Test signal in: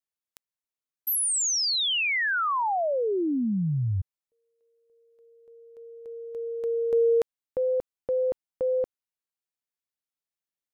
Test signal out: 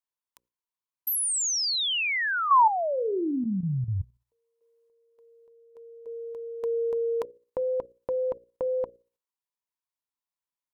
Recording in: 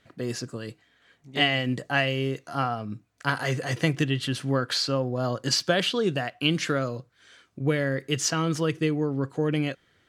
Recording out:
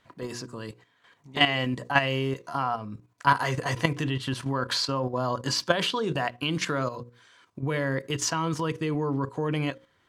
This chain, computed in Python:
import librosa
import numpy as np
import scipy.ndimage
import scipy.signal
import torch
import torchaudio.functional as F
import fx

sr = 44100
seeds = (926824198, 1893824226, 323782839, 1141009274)

y = fx.peak_eq(x, sr, hz=990.0, db=13.5, octaves=0.33)
y = fx.hum_notches(y, sr, base_hz=60, count=9)
y = fx.level_steps(y, sr, step_db=10)
y = y * 10.0 ** (3.0 / 20.0)